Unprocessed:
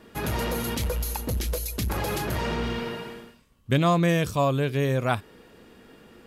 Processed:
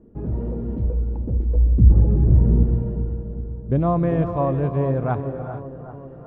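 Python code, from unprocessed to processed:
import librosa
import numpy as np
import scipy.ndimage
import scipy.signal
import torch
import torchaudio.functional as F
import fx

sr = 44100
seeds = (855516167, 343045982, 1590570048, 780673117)

y = fx.bass_treble(x, sr, bass_db=12, treble_db=-4, at=(1.55, 2.63))
y = fx.filter_sweep_lowpass(y, sr, from_hz=370.0, to_hz=940.0, start_s=3.34, end_s=3.98, q=0.97)
y = fx.low_shelf(y, sr, hz=89.0, db=9.5)
y = fx.echo_bbd(y, sr, ms=389, stages=4096, feedback_pct=64, wet_db=-13.0)
y = fx.rev_gated(y, sr, seeds[0], gate_ms=470, shape='rising', drr_db=9.0)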